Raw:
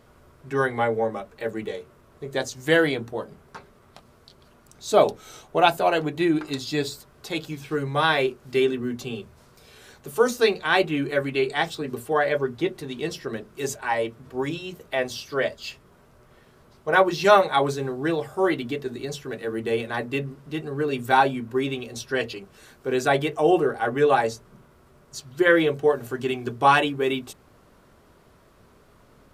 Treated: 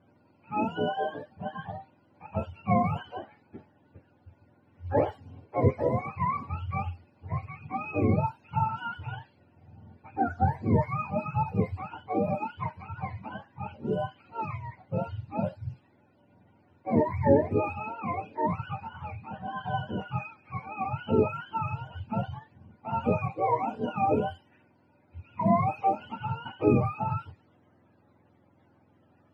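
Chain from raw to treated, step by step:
frequency axis turned over on the octave scale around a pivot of 590 Hz
low-pass that shuts in the quiet parts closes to 1,700 Hz, open at −18 dBFS
level −5 dB

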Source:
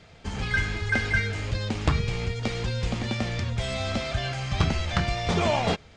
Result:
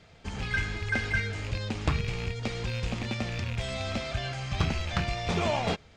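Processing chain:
loose part that buzzes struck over −26 dBFS, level −23 dBFS
level −4 dB

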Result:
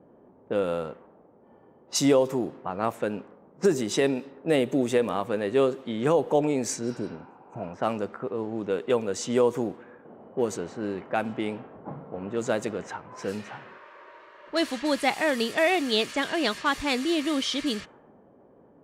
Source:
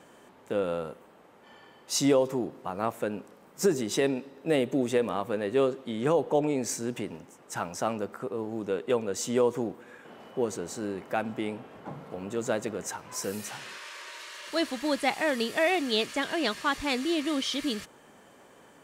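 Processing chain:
healed spectral selection 0:06.86–0:07.64, 720–5,900 Hz both
low-pass that shuts in the quiet parts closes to 490 Hz, open at −25.5 dBFS
level +2.5 dB

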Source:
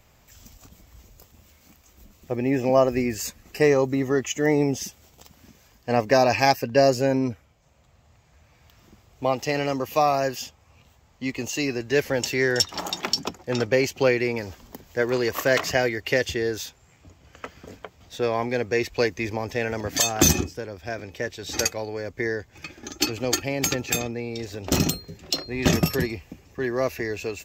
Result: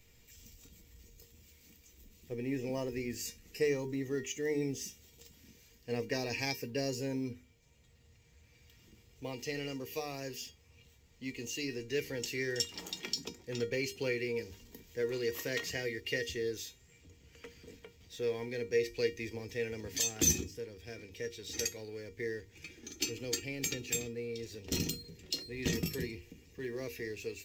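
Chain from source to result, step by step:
mu-law and A-law mismatch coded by mu
flat-topped bell 930 Hz −12 dB
mains-hum notches 50/100/150/200/250/300/350/400 Hz
tuned comb filter 470 Hz, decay 0.22 s, harmonics all, mix 80%

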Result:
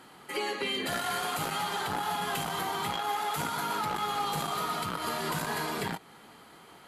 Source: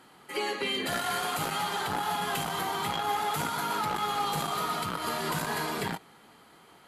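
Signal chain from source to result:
0:02.96–0:03.38: low-shelf EQ 190 Hz −11 dB
in parallel at +2 dB: downward compressor, threshold −39 dBFS, peak gain reduction 12.5 dB
on the sum: level −4 dB

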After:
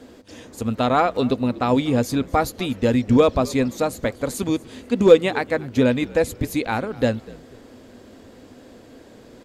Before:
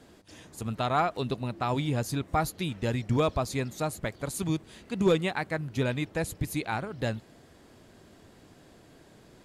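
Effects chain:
thirty-one-band graphic EQ 160 Hz −10 dB, 250 Hz +10 dB, 500 Hz +9 dB, 10,000 Hz −6 dB
echo with shifted repeats 244 ms, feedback 34%, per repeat −61 Hz, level −21.5 dB
level +6.5 dB

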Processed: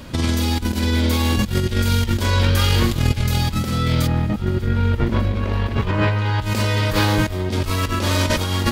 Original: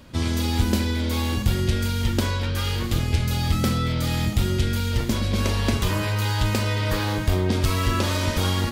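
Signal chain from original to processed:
compressor whose output falls as the input rises −25 dBFS, ratio −0.5
0:04.06–0:06.41: low-pass filter 1,400 Hz → 2,700 Hz 12 dB per octave
feedback echo with a high-pass in the loop 596 ms, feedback 78%, level −22 dB
level +7 dB

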